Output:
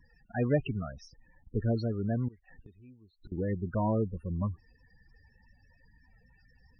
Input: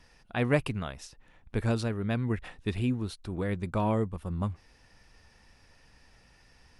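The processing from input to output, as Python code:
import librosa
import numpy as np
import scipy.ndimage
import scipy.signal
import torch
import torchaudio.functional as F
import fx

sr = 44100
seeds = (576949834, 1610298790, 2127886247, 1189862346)

y = fx.cheby_harmonics(x, sr, harmonics=(5,), levels_db=(-29,), full_scale_db=-12.5)
y = fx.spec_topn(y, sr, count=16)
y = fx.gate_flip(y, sr, shuts_db=-35.0, range_db=-25, at=(2.28, 3.32))
y = y * 10.0 ** (-1.5 / 20.0)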